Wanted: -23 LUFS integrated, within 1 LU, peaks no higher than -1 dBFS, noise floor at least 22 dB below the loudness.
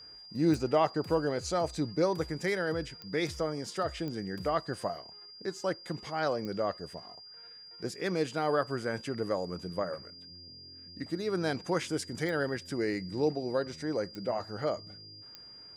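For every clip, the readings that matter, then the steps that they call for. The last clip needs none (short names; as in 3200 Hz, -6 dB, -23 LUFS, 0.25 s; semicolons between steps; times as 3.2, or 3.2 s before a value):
clicks 7; steady tone 4800 Hz; tone level -48 dBFS; loudness -33.0 LUFS; peak -14.0 dBFS; loudness target -23.0 LUFS
-> de-click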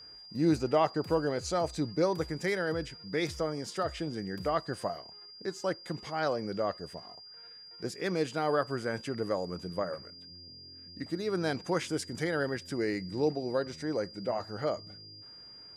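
clicks 0; steady tone 4800 Hz; tone level -48 dBFS
-> notch 4800 Hz, Q 30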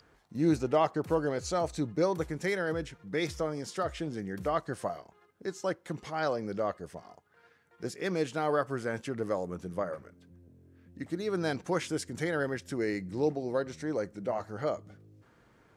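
steady tone none; loudness -33.0 LUFS; peak -14.0 dBFS; loudness target -23.0 LUFS
-> gain +10 dB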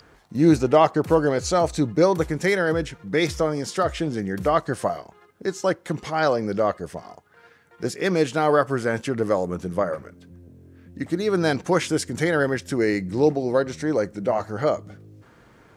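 loudness -23.0 LUFS; peak -4.0 dBFS; noise floor -54 dBFS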